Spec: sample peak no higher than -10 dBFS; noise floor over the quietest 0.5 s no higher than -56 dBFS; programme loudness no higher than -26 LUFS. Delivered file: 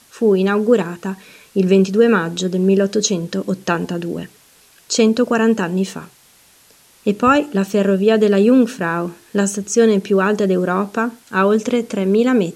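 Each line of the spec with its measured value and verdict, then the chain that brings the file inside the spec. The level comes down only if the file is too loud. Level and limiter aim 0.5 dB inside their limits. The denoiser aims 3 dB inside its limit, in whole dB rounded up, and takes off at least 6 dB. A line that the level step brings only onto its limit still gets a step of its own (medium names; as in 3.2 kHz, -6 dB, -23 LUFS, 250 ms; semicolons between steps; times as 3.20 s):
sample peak -2.0 dBFS: fail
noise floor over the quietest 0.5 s -51 dBFS: fail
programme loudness -16.5 LUFS: fail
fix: trim -10 dB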